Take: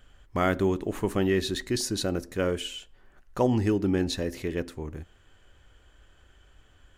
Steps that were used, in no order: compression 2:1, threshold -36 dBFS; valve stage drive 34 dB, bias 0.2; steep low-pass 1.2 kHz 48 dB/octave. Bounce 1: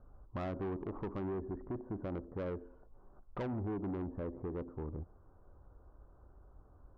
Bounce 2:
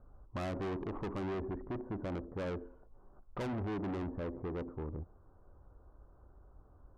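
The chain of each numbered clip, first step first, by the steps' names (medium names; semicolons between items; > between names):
steep low-pass > compression > valve stage; steep low-pass > valve stage > compression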